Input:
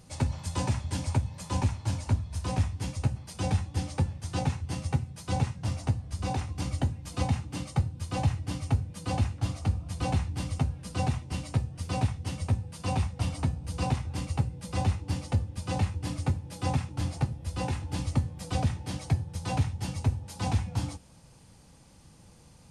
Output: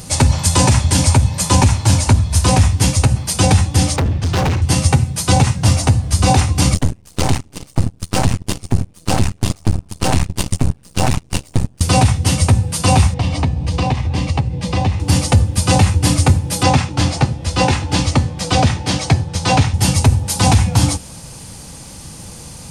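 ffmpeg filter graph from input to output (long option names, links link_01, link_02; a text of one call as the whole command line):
ffmpeg -i in.wav -filter_complex "[0:a]asettb=1/sr,asplit=3[link_01][link_02][link_03];[link_01]atrim=end=3.964[link_04];[link_02]atrim=start=3.96:end=4.62,asetpts=PTS-STARTPTS,afade=type=in:duration=0.004:curve=qsin,afade=type=out:start_time=0.656:duration=0.004:curve=qsin,lowpass=4000,lowshelf=frequency=170:gain=5,volume=33dB,asoftclip=hard,volume=-33dB[link_05];[link_03]atrim=start=4.616[link_06];[link_04][link_05]acrossfade=duration=0.004:curve1=hsin:curve2=qsin[link_07];[link_07][link_06]acrossfade=duration=0.004:curve1=qsin:curve2=hsin,asettb=1/sr,asplit=3[link_08][link_09][link_10];[link_08]atrim=end=6.744[link_11];[link_09]atrim=start=6.74:end=11.81,asetpts=PTS-STARTPTS,afade=type=in:duration=0.004:curve=qsin,afade=type=out:start_time=5.066:duration=0.004:curve=qsin,agate=range=-21dB:threshold=-32dB:ratio=16:release=100:detection=peak,aeval=exprs='max(val(0),0)':channel_layout=same[link_12];[link_10]atrim=start=11.806[link_13];[link_11][link_12]acrossfade=duration=0.004:curve1=hsin:curve2=qsin[link_14];[link_14][link_13]acrossfade=duration=0.004:curve1=qsin:curve2=hsin,asettb=1/sr,asplit=3[link_15][link_16][link_17];[link_15]atrim=end=13.144[link_18];[link_16]atrim=start=13.14:end=15,asetpts=PTS-STARTPTS,afade=type=in:duration=0.004:curve=qsin,afade=type=out:start_time=1.856:duration=0.004:curve=qsin,lowpass=3900,equalizer=frequency=1400:width=7.7:gain=-12,acompressor=threshold=-34dB:ratio=3:attack=3.2:release=140:knee=1:detection=peak[link_19];[link_17]atrim=start=14.996[link_20];[link_18][link_19]acrossfade=duration=0.004:curve1=hsin:curve2=qsin[link_21];[link_21][link_20]acrossfade=duration=0.004:curve1=qsin:curve2=hsin,asettb=1/sr,asplit=3[link_22][link_23][link_24];[link_22]atrim=end=16.634[link_25];[link_23]atrim=start=16.63:end=19.74,asetpts=PTS-STARTPTS,afade=type=in:duration=0.004:curve=qsin,afade=type=out:start_time=3.106:duration=0.004:curve=qsin,lowpass=5800,lowshelf=frequency=160:gain=-7.5[link_26];[link_24]atrim=start=19.736[link_27];[link_25][link_26]acrossfade=duration=0.004:curve1=hsin:curve2=qsin[link_28];[link_28][link_27]acrossfade=duration=0.004:curve1=qsin:curve2=hsin,highshelf=frequency=4800:gain=9.5,alimiter=level_in=20.5dB:limit=-1dB:release=50:level=0:latency=1,volume=-1dB" out.wav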